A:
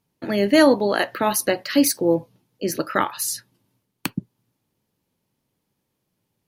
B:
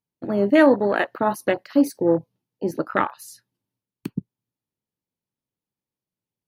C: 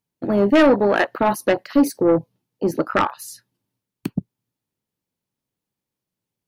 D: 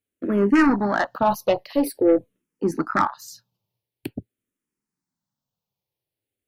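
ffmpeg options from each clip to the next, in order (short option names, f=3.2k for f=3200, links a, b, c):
-af "afwtdn=0.0501"
-af "asoftclip=type=tanh:threshold=-14dB,volume=5.5dB"
-filter_complex "[0:a]asplit=2[a][b];[b]afreqshift=-0.47[c];[a][c]amix=inputs=2:normalize=1"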